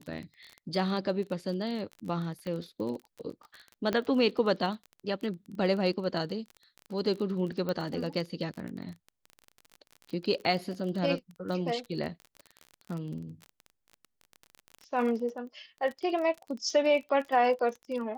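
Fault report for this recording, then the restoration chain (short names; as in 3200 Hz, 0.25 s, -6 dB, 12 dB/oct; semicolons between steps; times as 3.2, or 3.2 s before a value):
crackle 26/s -36 dBFS
2.47 pop -26 dBFS
3.93 pop -17 dBFS
7.69 pop -20 dBFS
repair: de-click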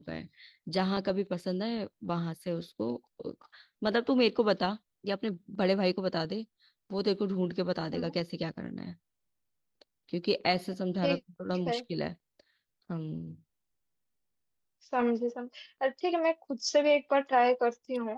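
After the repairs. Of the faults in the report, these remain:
2.47 pop
3.93 pop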